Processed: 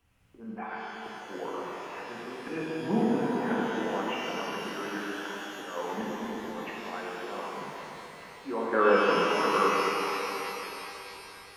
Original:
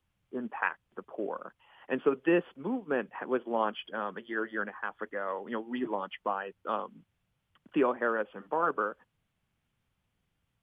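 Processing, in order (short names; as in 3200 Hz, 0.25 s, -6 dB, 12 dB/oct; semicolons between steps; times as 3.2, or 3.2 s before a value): speed mistake 48 kHz file played as 44.1 kHz; auto swell 0.64 s; shimmer reverb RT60 3.7 s, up +12 st, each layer -8 dB, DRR -6.5 dB; gain +6.5 dB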